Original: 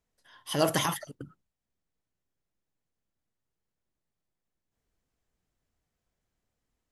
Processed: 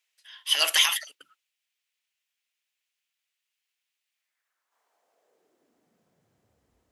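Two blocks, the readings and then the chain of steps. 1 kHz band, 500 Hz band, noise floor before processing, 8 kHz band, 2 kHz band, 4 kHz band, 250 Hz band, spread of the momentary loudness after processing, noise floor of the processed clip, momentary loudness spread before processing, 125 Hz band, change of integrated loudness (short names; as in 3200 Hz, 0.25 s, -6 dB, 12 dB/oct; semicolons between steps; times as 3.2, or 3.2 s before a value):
-3.0 dB, -10.0 dB, under -85 dBFS, +8.0 dB, +9.5 dB, +13.5 dB, under -20 dB, 13 LU, -84 dBFS, 22 LU, under -30 dB, +7.0 dB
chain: bell 500 Hz +8.5 dB 2.4 oct; high-pass sweep 2600 Hz -> 62 Hz, 4.11–6.77; gain +7 dB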